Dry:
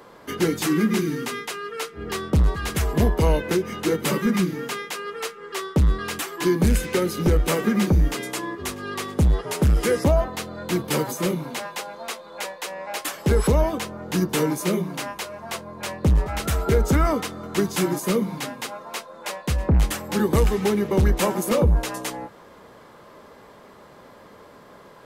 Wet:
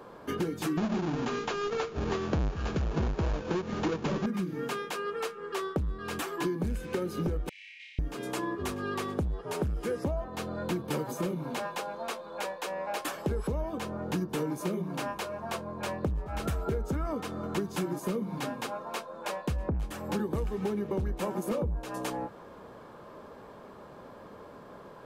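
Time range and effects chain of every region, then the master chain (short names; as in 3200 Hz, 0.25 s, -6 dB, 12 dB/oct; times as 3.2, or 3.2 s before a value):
0.77–4.26 half-waves squared off + brick-wall FIR low-pass 7300 Hz
7.49–7.99 steep high-pass 2000 Hz 96 dB/oct + tape spacing loss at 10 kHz 42 dB + flutter echo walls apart 5.2 m, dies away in 1.4 s
whole clip: high shelf 2200 Hz -9.5 dB; notch 2000 Hz, Q 11; compressor 10:1, threshold -28 dBFS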